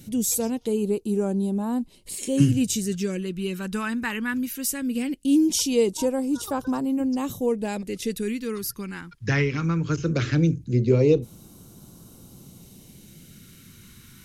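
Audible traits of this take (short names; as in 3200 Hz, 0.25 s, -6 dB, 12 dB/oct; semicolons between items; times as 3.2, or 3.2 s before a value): phasing stages 2, 0.19 Hz, lowest notch 610–1900 Hz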